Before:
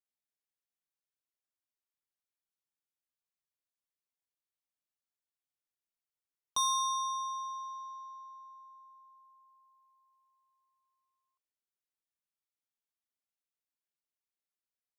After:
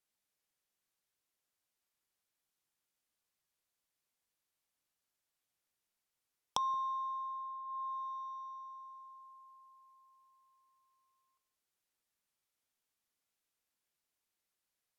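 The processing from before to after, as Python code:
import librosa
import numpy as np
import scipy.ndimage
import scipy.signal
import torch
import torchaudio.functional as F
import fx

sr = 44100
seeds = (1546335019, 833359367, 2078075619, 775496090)

y = x + 10.0 ** (-16.0 / 20.0) * np.pad(x, (int(177 * sr / 1000.0), 0))[:len(x)]
y = fx.env_lowpass_down(y, sr, base_hz=640.0, full_db=-40.5)
y = y * 10.0 ** (7.0 / 20.0)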